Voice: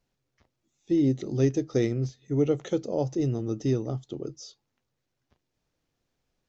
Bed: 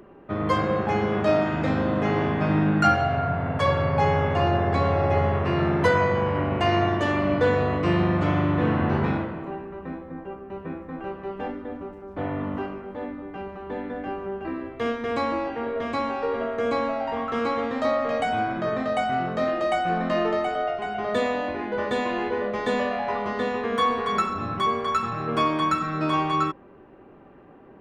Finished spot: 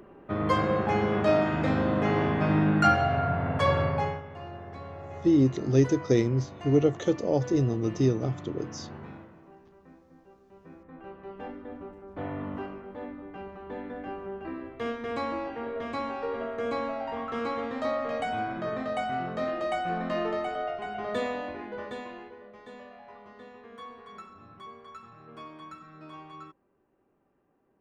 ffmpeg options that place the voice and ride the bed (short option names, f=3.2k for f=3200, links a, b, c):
-filter_complex "[0:a]adelay=4350,volume=2dB[a];[1:a]volume=11.5dB,afade=t=out:st=3.8:d=0.42:silence=0.133352,afade=t=in:st=10.5:d=1.34:silence=0.211349,afade=t=out:st=21.22:d=1.14:silence=0.158489[b];[a][b]amix=inputs=2:normalize=0"